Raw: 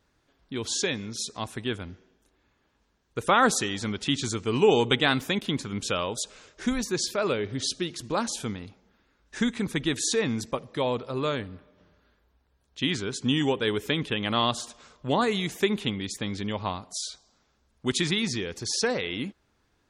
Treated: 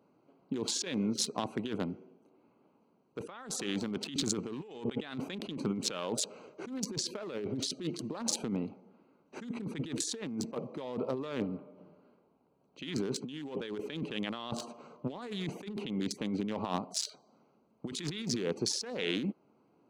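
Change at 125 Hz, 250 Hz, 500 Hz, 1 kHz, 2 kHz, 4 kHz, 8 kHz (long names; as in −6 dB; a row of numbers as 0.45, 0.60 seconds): −8.5, −6.0, −10.5, −14.0, −15.0, −9.0, −5.0 decibels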